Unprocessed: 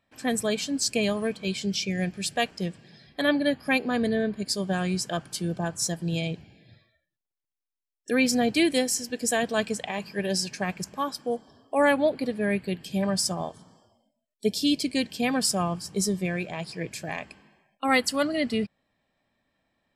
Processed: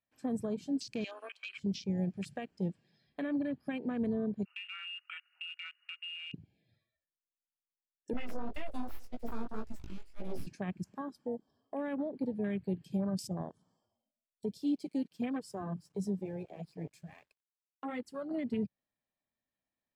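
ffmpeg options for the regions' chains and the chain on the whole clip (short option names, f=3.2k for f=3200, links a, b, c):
-filter_complex "[0:a]asettb=1/sr,asplit=3[a][b][c];[a]atrim=end=1.044[d];[b]atrim=start=1.04:end=1.58,asetpts=PTS-STARTPTS,afade=t=in:d=0.004:c=qsin,afade=t=out:st=0.536:d=0.004:c=qsin,highpass=f=690:w=0.5412,highpass=f=690:w=1.3066,equalizer=f=2.6k:w=2.8:g=14[e];[c]atrim=start=1.576[f];[d][e]acrossfade=d=0.004:c1=hsin:c2=qsin[g];[g][f]acrossfade=d=0.004:c1=qsin:c2=hsin,asettb=1/sr,asplit=3[h][i][j];[h]atrim=end=4.454[k];[i]atrim=start=4.45:end=6.34,asetpts=PTS-STARTPTS,afade=t=in:d=0.004:c=qsin,afade=t=out:st=1.886:d=0.004:c=qsin,lowpass=f=2.6k:t=q:w=0.5098,lowpass=f=2.6k:t=q:w=0.6013,lowpass=f=2.6k:t=q:w=0.9,lowpass=f=2.6k:t=q:w=2.563,afreqshift=-3000,highpass=f=1.4k:t=q:w=2[l];[j]atrim=start=6.336[m];[k][l]acrossfade=d=0.004:c1=hsin:c2=qsin[n];[n][m]acrossfade=d=0.004:c1=qsin:c2=hsin,asettb=1/sr,asplit=3[o][p][q];[o]atrim=end=8.134[r];[p]atrim=start=8.13:end=10.47,asetpts=PTS-STARTPTS,afade=t=in:d=0.004:c=qsin,afade=t=out:st=2.336:d=0.004:c=qsin,aeval=exprs='abs(val(0))':c=same,flanger=delay=16:depth=5.8:speed=1.9[s];[q]atrim=start=10.466[t];[r][s]acrossfade=d=0.004:c1=hsin:c2=qsin[u];[u][t]acrossfade=d=0.004:c1=qsin:c2=hsin,asettb=1/sr,asplit=3[v][w][x];[v]atrim=end=14.574[y];[w]atrim=start=14.57:end=18.31,asetpts=PTS-STARTPTS,afade=t=in:d=0.004:c=qsin,afade=t=out:st=3.736:d=0.004:c=qsin,flanger=delay=1.9:depth=5.1:regen=-11:speed=1.1:shape=sinusoidal,aeval=exprs='sgn(val(0))*max(abs(val(0))-0.00237,0)':c=same[z];[x]atrim=start=18.306[aa];[y][z]acrossfade=d=0.004:c1=hsin:c2=qsin[ab];[ab][aa]acrossfade=d=0.004:c1=qsin:c2=hsin,afwtdn=0.0282,alimiter=limit=-20.5dB:level=0:latency=1:release=72,acrossover=split=410[ac][ad];[ad]acompressor=threshold=-42dB:ratio=3[ae];[ac][ae]amix=inputs=2:normalize=0,volume=-3.5dB"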